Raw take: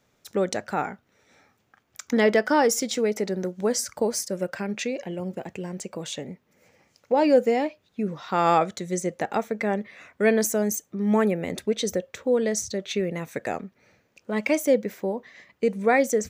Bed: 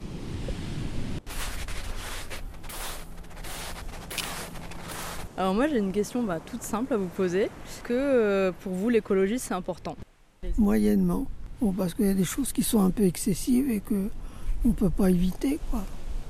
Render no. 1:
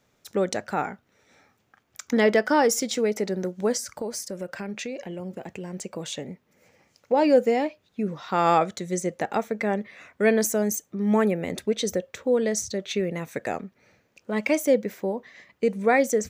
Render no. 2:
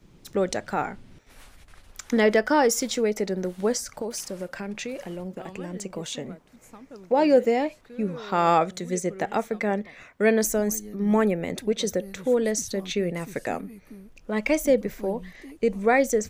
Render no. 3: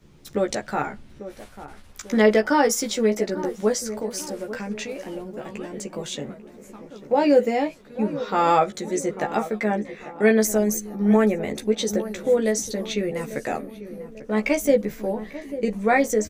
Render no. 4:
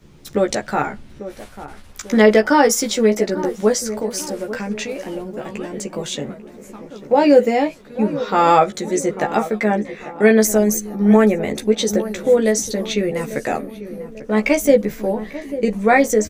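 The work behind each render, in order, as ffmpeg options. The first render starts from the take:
-filter_complex "[0:a]asettb=1/sr,asplit=3[s0][s1][s2];[s0]atrim=end=3.774[s3];[s1]atrim=start=3.77:end=5.74,asetpts=PTS-STARTPTS,afade=t=in:d=0.004:c=qsin,afade=t=out:st=1.966:d=0.004:c=qsin,acompressor=threshold=0.0251:ratio=2:attack=3.2:release=140:knee=1:detection=peak[s4];[s2]atrim=start=5.736[s5];[s3][s4]acrossfade=d=0.004:c1=hsin:c2=qsin[s6];[s6][s5]acrossfade=d=0.004:c1=qsin:c2=hsin"
-filter_complex "[1:a]volume=0.133[s0];[0:a][s0]amix=inputs=2:normalize=0"
-filter_complex "[0:a]asplit=2[s0][s1];[s1]adelay=14,volume=0.668[s2];[s0][s2]amix=inputs=2:normalize=0,asplit=2[s3][s4];[s4]adelay=844,lowpass=f=1100:p=1,volume=0.224,asplit=2[s5][s6];[s6]adelay=844,lowpass=f=1100:p=1,volume=0.53,asplit=2[s7][s8];[s8]adelay=844,lowpass=f=1100:p=1,volume=0.53,asplit=2[s9][s10];[s10]adelay=844,lowpass=f=1100:p=1,volume=0.53,asplit=2[s11][s12];[s12]adelay=844,lowpass=f=1100:p=1,volume=0.53[s13];[s3][s5][s7][s9][s11][s13]amix=inputs=6:normalize=0"
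-af "volume=1.88,alimiter=limit=0.891:level=0:latency=1"

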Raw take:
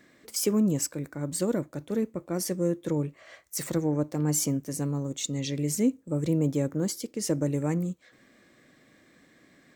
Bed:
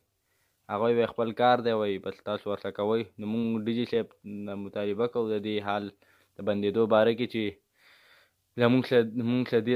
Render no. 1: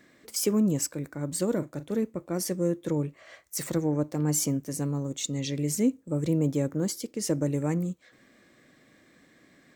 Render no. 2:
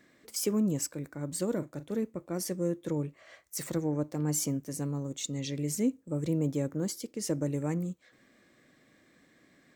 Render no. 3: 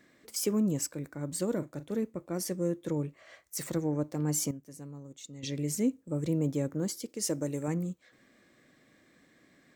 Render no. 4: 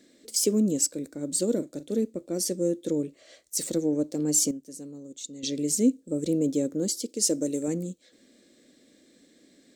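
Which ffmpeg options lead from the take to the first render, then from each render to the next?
-filter_complex "[0:a]asettb=1/sr,asplit=3[s0][s1][s2];[s0]atrim=end=1.484[s3];[s1]atrim=start=1.48:end=1.94,asetpts=PTS-STARTPTS,afade=t=in:d=0.004:c=qsin,afade=t=out:st=0.456:d=0.004:c=qsin,asplit=2[s4][s5];[s5]adelay=40,volume=0.211[s6];[s4][s6]amix=inputs=2:normalize=0,atrim=end_sample=20286[s7];[s2]atrim=start=1.936[s8];[s3][s7]acrossfade=d=0.004:c1=hsin:c2=qsin[s9];[s9][s8]acrossfade=d=0.004:c1=qsin:c2=hsin"
-af "volume=0.631"
-filter_complex "[0:a]asettb=1/sr,asplit=3[s0][s1][s2];[s0]atrim=end=7.094[s3];[s1]atrim=start=7.09:end=7.68,asetpts=PTS-STARTPTS,afade=t=in:d=0.004:c=qsin,afade=t=out:st=0.586:d=0.004:c=qsin,bass=f=250:g=-5,treble=f=4000:g=5[s4];[s2]atrim=start=7.676[s5];[s3][s4]acrossfade=d=0.004:c1=hsin:c2=qsin[s6];[s6][s5]acrossfade=d=0.004:c1=qsin:c2=hsin,asplit=3[s7][s8][s9];[s7]atrim=end=4.512[s10];[s8]atrim=start=4.508:end=5.432,asetpts=PTS-STARTPTS,volume=0.282[s11];[s9]atrim=start=5.428[s12];[s10][s11]acrossfade=d=0.004:c1=hsin:c2=hsin[s13];[s13][s12]acrossfade=d=0.004:c1=hsin:c2=hsin"
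-af "equalizer=f=125:t=o:w=1:g=-10,equalizer=f=250:t=o:w=1:g=8,equalizer=f=500:t=o:w=1:g=7,equalizer=f=1000:t=o:w=1:g=-11,equalizer=f=2000:t=o:w=1:g=-4,equalizer=f=4000:t=o:w=1:g=8,equalizer=f=8000:t=o:w=1:g=9"

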